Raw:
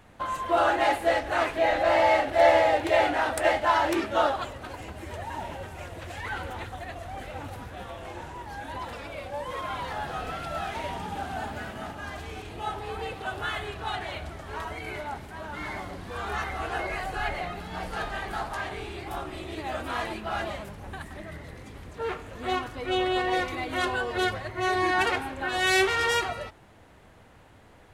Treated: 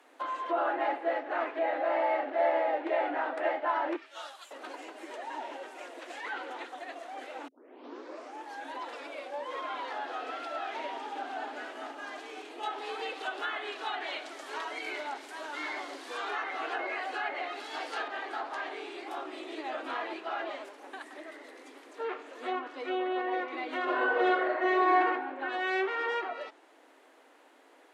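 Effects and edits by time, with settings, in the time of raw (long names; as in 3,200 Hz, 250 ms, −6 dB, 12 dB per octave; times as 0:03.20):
0:03.96–0:04.51: first difference
0:07.48: tape start 1.01 s
0:12.63–0:18.08: high-shelf EQ 2,900 Hz +11.5 dB
0:23.84–0:24.98: thrown reverb, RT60 0.84 s, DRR −10 dB
whole clip: treble cut that deepens with the level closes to 2,000 Hz, closed at −24.5 dBFS; Butterworth high-pass 260 Hz 96 dB per octave; downward compressor 1.5 to 1, threshold −29 dBFS; level −3 dB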